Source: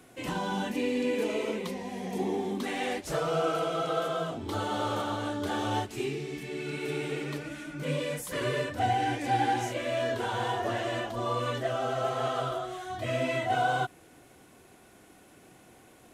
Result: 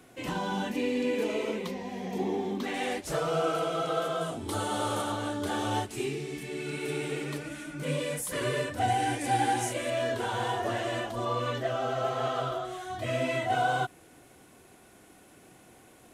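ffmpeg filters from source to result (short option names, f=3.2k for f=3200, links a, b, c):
-af "asetnsamples=n=441:p=0,asendcmd='1.68 equalizer g -8;2.74 equalizer g 3;4.21 equalizer g 14.5;5.12 equalizer g 7;8.88 equalizer g 14;9.9 equalizer g 4.5;11.25 equalizer g -4.5;12.65 equalizer g 2.5',equalizer=f=9.6k:t=o:w=0.72:g=-2"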